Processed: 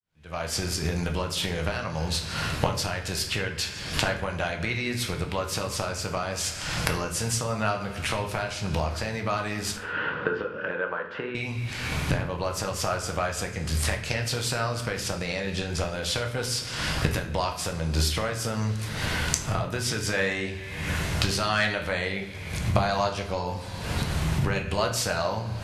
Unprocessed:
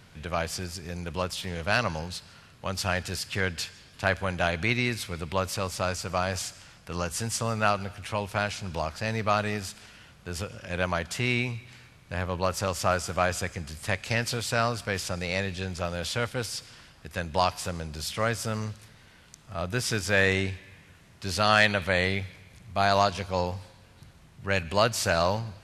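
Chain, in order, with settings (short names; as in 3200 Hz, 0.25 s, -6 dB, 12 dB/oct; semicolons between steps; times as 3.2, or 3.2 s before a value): opening faded in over 3.35 s; recorder AGC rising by 61 dB/s; 9.76–11.35 speaker cabinet 290–2400 Hz, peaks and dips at 470 Hz +8 dB, 700 Hz -10 dB, 1500 Hz +7 dB, 2200 Hz -10 dB; shoebox room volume 110 m³, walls mixed, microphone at 0.55 m; gain -5 dB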